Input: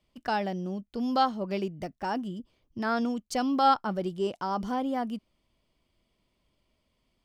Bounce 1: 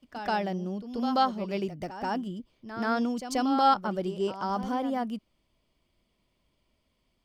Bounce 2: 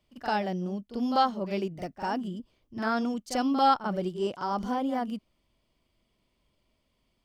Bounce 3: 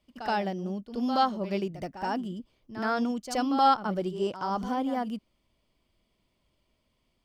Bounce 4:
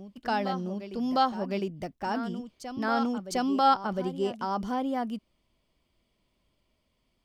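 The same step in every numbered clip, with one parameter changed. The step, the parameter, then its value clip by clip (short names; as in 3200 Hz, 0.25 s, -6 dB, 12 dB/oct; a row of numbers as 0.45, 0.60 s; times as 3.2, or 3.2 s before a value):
reverse echo, time: 133, 44, 75, 707 ms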